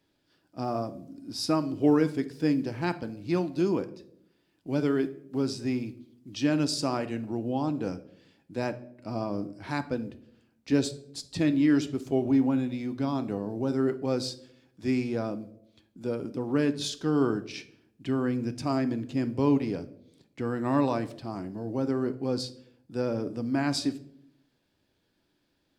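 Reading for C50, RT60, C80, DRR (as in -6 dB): 16.0 dB, 0.70 s, 19.5 dB, 10.0 dB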